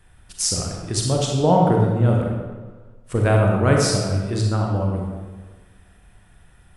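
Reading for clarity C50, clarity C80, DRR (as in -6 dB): 1.0 dB, 3.0 dB, -1.0 dB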